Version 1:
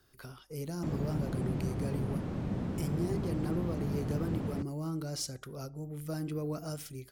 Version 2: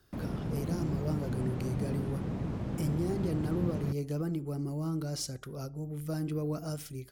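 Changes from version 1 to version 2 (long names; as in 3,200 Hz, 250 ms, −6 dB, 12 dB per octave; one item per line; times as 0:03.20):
speech: add low-shelf EQ 380 Hz +3.5 dB
background: entry −0.70 s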